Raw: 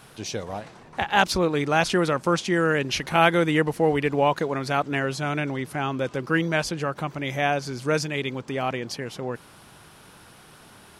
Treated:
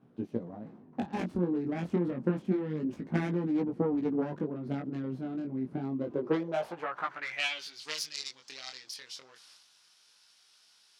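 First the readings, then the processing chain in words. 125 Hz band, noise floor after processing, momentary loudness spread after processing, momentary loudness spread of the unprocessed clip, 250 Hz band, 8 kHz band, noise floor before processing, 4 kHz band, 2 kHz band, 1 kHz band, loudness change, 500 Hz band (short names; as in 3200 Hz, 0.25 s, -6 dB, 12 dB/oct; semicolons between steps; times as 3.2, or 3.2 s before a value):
-8.5 dB, -64 dBFS, 12 LU, 12 LU, -4.5 dB, -11.5 dB, -50 dBFS, -9.5 dB, -15.0 dB, -16.0 dB, -9.5 dB, -11.0 dB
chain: self-modulated delay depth 0.56 ms; transient shaper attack +12 dB, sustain +8 dB; band-pass sweep 240 Hz -> 5100 Hz, 5.95–7.92; chorus 0.28 Hz, delay 16.5 ms, depth 7 ms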